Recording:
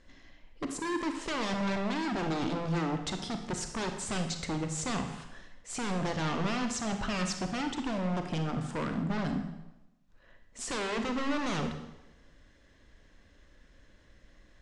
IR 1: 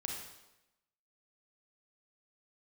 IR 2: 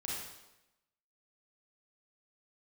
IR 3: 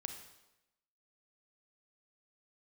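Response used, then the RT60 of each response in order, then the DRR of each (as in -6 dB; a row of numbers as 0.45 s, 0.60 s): 3; 0.95 s, 0.95 s, 0.95 s; 0.0 dB, -5.5 dB, 5.5 dB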